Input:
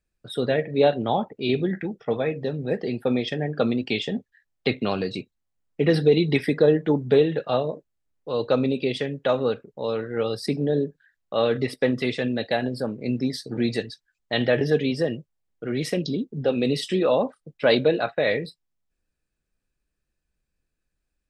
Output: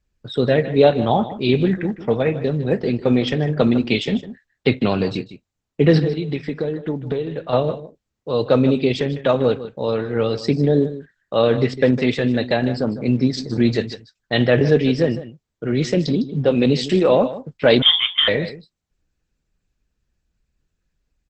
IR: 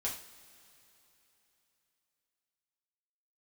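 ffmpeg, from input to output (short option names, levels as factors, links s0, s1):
-filter_complex "[0:a]equalizer=f=62:w=0.3:g=6,asettb=1/sr,asplit=3[s0][s1][s2];[s0]atrim=end=6.044[s3];[s1]atrim=start=6.04:end=7.53,asetpts=PTS-STARTPTS,afade=t=in:d=0.004:c=qsin,afade=t=out:st=1.486:d=0.004:c=qsin,acompressor=threshold=0.0447:ratio=4[s4];[s2]atrim=start=7.526[s5];[s3][s4]acrossfade=d=0.004:c1=hsin:c2=qsin[s6];[s6][s5]acrossfade=d=0.004:c1=qsin:c2=hsin,aecho=1:1:154:0.2,asettb=1/sr,asplit=3[s7][s8][s9];[s7]atrim=end=17.824[s10];[s8]atrim=start=17.82:end=18.28,asetpts=PTS-STARTPTS,afade=t=in:d=0.004:c=qsin,afade=t=out:st=0.456:d=0.004:c=qsin,lowpass=f=3100:t=q:w=0.5098,lowpass=f=3100:t=q:w=0.6013,lowpass=f=3100:t=q:w=0.9,lowpass=f=3100:t=q:w=2.563,afreqshift=-3700[s11];[s9]atrim=start=18.276[s12];[s10][s11]acrossfade=d=0.004:c1=hsin:c2=qsin[s13];[s13][s12]acrossfade=d=0.004:c1=qsin:c2=hsin,volume=1.68" -ar 48000 -c:a libopus -b:a 12k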